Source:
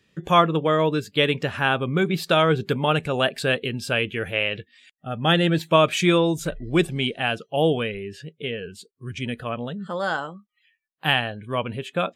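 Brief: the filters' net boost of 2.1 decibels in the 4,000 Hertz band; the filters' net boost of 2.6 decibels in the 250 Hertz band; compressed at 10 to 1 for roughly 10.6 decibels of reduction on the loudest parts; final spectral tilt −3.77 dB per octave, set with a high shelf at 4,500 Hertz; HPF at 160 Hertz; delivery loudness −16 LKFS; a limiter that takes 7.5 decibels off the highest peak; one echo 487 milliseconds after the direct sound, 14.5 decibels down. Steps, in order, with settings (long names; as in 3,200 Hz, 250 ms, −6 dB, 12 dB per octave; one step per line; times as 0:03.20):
high-pass filter 160 Hz
parametric band 250 Hz +5.5 dB
parametric band 4,000 Hz +6 dB
high-shelf EQ 4,500 Hz −6.5 dB
downward compressor 10 to 1, threshold −21 dBFS
brickwall limiter −16 dBFS
single-tap delay 487 ms −14.5 dB
level +13 dB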